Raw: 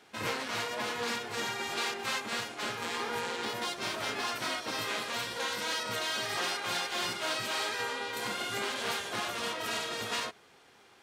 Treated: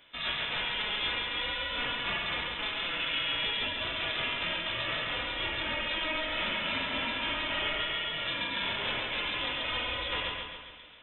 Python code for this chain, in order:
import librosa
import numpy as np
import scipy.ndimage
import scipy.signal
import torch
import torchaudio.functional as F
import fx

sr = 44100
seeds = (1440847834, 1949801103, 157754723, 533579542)

y = scipy.signal.sosfilt(scipy.signal.butter(2, 120.0, 'highpass', fs=sr, output='sos'), x)
y = fx.peak_eq(y, sr, hz=190.0, db=8.0, octaves=0.41)
y = fx.echo_feedback(y, sr, ms=137, feedback_pct=51, wet_db=-3.5)
y = fx.rev_plate(y, sr, seeds[0], rt60_s=2.7, hf_ratio=0.9, predelay_ms=0, drr_db=11.0)
y = fx.freq_invert(y, sr, carrier_hz=3800)